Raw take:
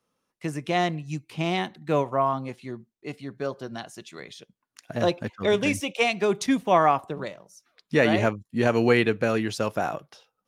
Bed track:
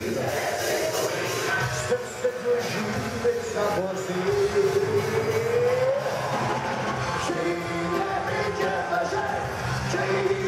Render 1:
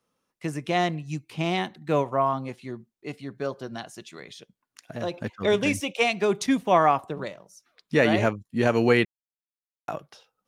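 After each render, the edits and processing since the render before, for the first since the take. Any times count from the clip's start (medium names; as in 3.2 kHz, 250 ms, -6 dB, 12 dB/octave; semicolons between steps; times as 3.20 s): 4.10–5.14 s: compression 1.5:1, threshold -38 dBFS; 9.05–9.88 s: mute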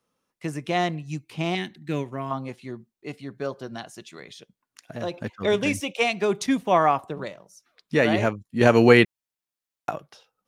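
1.55–2.31 s: high-order bell 800 Hz -11.5 dB; 8.61–9.90 s: gain +5.5 dB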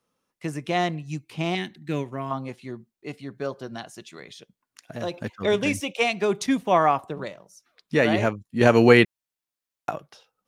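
4.93–5.42 s: treble shelf 5.3 kHz +4.5 dB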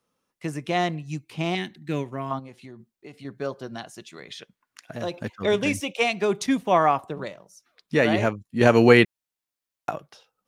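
2.39–3.25 s: compression, threshold -38 dBFS; 4.30–4.93 s: peaking EQ 1.6 kHz +13.5 dB -> +4 dB 2.1 oct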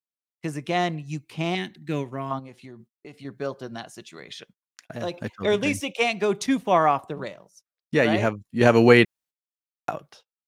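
gate -51 dBFS, range -33 dB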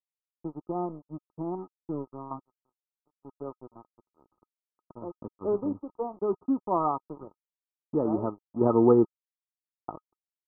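crossover distortion -34 dBFS; rippled Chebyshev low-pass 1.3 kHz, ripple 9 dB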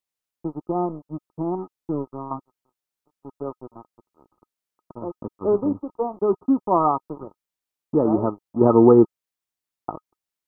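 trim +7.5 dB; peak limiter -3 dBFS, peak gain reduction 2 dB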